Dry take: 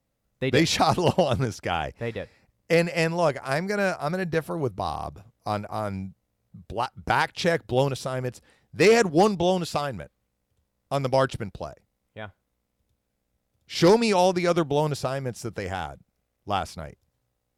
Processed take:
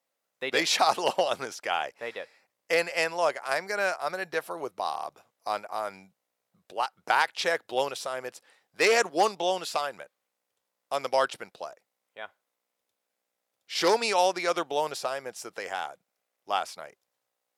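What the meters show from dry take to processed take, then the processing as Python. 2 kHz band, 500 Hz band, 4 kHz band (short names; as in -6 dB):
0.0 dB, -5.0 dB, 0.0 dB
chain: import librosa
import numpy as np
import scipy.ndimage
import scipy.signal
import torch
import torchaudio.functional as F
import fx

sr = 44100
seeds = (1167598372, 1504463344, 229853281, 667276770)

y = scipy.signal.sosfilt(scipy.signal.butter(2, 600.0, 'highpass', fs=sr, output='sos'), x)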